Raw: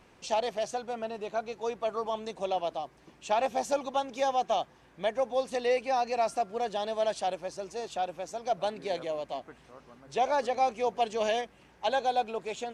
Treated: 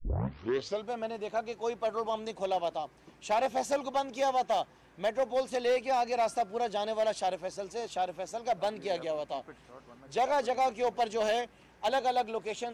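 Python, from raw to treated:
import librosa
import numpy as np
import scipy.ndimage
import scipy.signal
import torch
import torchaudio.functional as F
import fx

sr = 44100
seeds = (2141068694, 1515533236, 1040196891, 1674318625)

y = fx.tape_start_head(x, sr, length_s=0.9)
y = np.clip(10.0 ** (22.5 / 20.0) * y, -1.0, 1.0) / 10.0 ** (22.5 / 20.0)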